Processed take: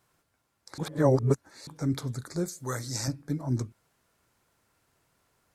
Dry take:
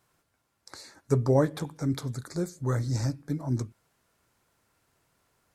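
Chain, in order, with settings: 0.78–1.67 s: reverse; 2.48–3.08 s: tilt EQ +3 dB/octave

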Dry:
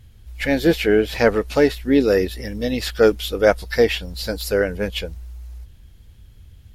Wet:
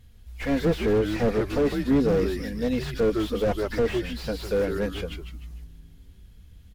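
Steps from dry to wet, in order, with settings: comb 4.2 ms, depth 40%; frequency-shifting echo 152 ms, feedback 37%, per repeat -110 Hz, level -9.5 dB; slew-rate limiter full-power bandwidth 85 Hz; trim -5 dB

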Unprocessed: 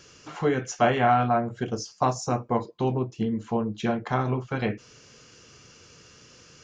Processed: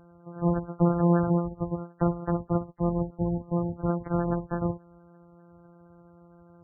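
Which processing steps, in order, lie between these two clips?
sorted samples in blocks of 256 samples; spectral gate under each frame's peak -15 dB strong

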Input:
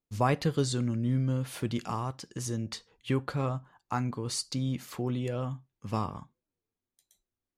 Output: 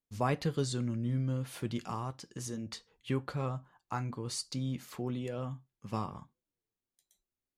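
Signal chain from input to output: flange 0.38 Hz, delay 4.2 ms, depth 2 ms, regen -77%

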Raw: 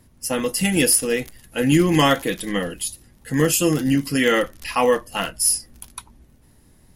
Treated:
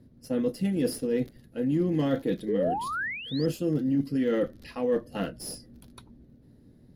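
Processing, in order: Chebyshev shaper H 8 -31 dB, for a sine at -3.5 dBFS; painted sound rise, 2.48–3.46 s, 390–5200 Hz -19 dBFS; ten-band graphic EQ 125 Hz +8 dB, 250 Hz +10 dB, 500 Hz +8 dB, 1 kHz -9 dB, 2 kHz -5 dB, 4 kHz +12 dB, 8 kHz -8 dB; reverse; compression 6:1, threshold -15 dBFS, peak gain reduction 12.5 dB; reverse; resonant high shelf 2.3 kHz -8.5 dB, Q 1.5; trim -8.5 dB

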